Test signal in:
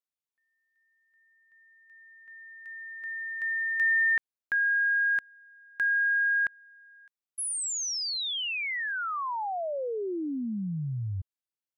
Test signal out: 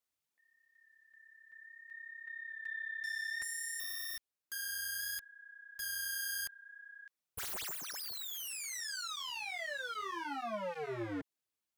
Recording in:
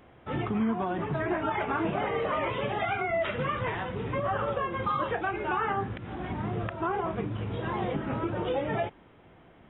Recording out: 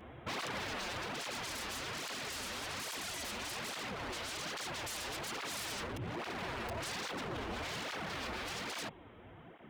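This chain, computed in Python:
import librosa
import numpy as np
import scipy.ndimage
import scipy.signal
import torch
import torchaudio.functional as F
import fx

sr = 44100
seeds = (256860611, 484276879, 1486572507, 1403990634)

y = fx.tracing_dist(x, sr, depth_ms=0.067)
y = (np.mod(10.0 ** (31.5 / 20.0) * y + 1.0, 2.0) - 1.0) / 10.0 ** (31.5 / 20.0)
y = fx.dynamic_eq(y, sr, hz=1500.0, q=3.6, threshold_db=-56.0, ratio=4.0, max_db=-6)
y = 10.0 ** (-37.5 / 20.0) * (np.abs((y / 10.0 ** (-37.5 / 20.0) + 3.0) % 4.0 - 2.0) - 1.0)
y = fx.rider(y, sr, range_db=4, speed_s=2.0)
y = fx.flanger_cancel(y, sr, hz=1.2, depth_ms=7.7)
y = y * 10.0 ** (4.0 / 20.0)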